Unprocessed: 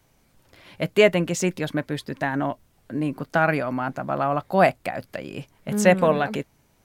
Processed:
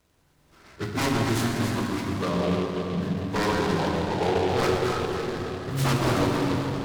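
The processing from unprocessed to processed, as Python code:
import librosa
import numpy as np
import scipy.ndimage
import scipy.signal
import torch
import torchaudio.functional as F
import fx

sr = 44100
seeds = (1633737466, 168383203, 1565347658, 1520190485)

y = fx.pitch_bins(x, sr, semitones=-7.5)
y = fx.low_shelf(y, sr, hz=120.0, db=-5.5)
y = 10.0 ** (-19.5 / 20.0) * (np.abs((y / 10.0 ** (-19.5 / 20.0) + 3.0) % 4.0 - 2.0) - 1.0)
y = fx.echo_alternate(y, sr, ms=140, hz=920.0, feedback_pct=51, wet_db=-2.5)
y = fx.rev_plate(y, sr, seeds[0], rt60_s=4.2, hf_ratio=0.6, predelay_ms=0, drr_db=-0.5)
y = fx.noise_mod_delay(y, sr, seeds[1], noise_hz=2400.0, depth_ms=0.054)
y = y * librosa.db_to_amplitude(-1.5)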